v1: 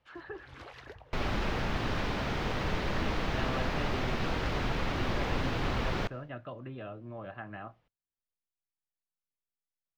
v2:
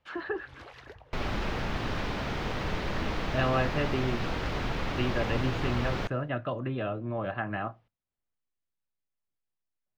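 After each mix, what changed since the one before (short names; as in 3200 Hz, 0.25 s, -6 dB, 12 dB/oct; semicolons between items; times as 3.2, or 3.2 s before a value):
speech +10.0 dB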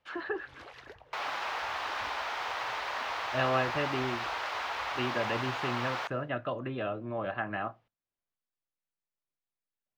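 second sound: add resonant high-pass 870 Hz, resonance Q 1.6; master: add low shelf 190 Hz -9.5 dB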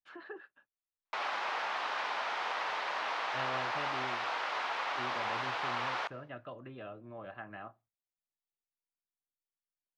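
speech -11.5 dB; first sound: muted; second sound: add air absorption 51 m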